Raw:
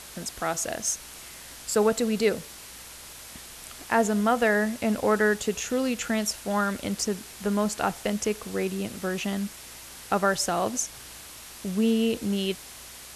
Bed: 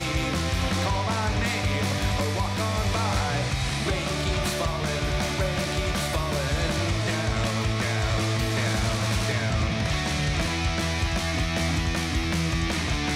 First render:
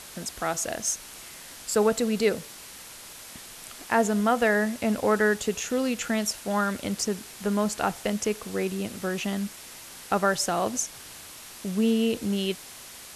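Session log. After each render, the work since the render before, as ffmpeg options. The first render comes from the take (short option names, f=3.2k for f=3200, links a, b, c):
-af "bandreject=f=60:t=h:w=4,bandreject=f=120:t=h:w=4"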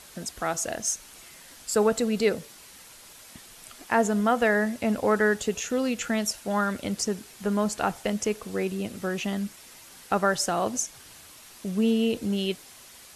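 -af "afftdn=nr=6:nf=-44"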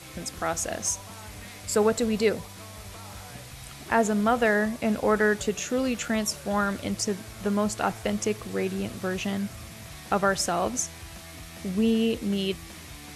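-filter_complex "[1:a]volume=-18dB[a];[0:a][a]amix=inputs=2:normalize=0"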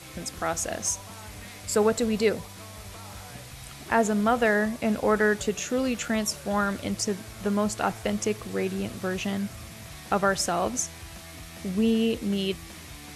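-af anull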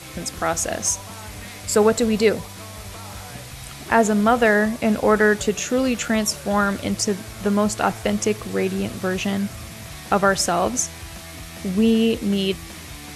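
-af "volume=6dB"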